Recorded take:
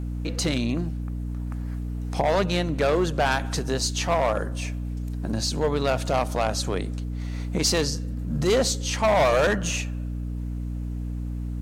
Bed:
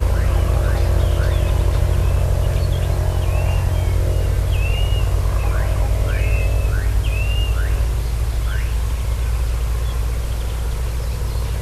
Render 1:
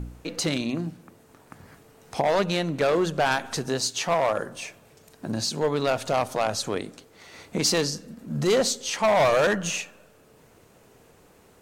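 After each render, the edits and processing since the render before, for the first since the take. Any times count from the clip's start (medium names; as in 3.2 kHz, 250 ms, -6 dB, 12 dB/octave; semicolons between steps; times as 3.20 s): de-hum 60 Hz, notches 5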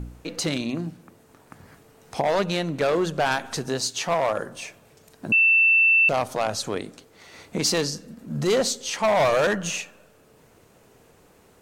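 5.32–6.09 s: bleep 2.67 kHz -14 dBFS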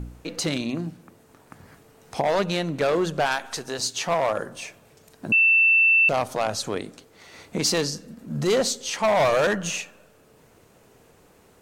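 3.26–3.79 s: peaking EQ 140 Hz -10.5 dB 2.7 oct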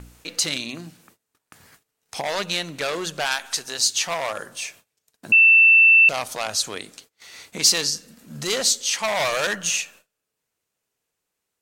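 gate -49 dBFS, range -25 dB; tilt shelf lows -8.5 dB, about 1.4 kHz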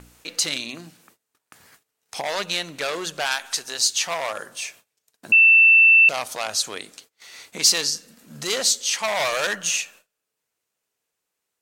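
bass shelf 210 Hz -8 dB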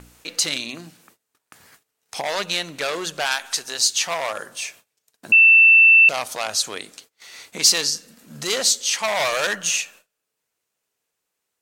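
trim +1.5 dB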